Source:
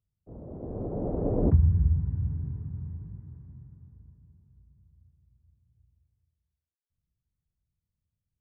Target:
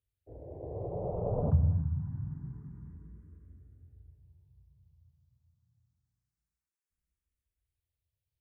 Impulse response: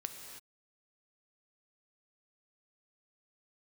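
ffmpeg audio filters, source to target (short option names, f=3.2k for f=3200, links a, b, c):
-filter_complex "[0:a]asplit=2[a][b];[b]highpass=f=210:w=0.5412,highpass=f=210:w=1.3066[c];[1:a]atrim=start_sample=2205[d];[c][d]afir=irnorm=-1:irlink=0,volume=-5dB[e];[a][e]amix=inputs=2:normalize=0,asplit=2[f][g];[g]afreqshift=0.26[h];[f][h]amix=inputs=2:normalize=1,volume=-2dB"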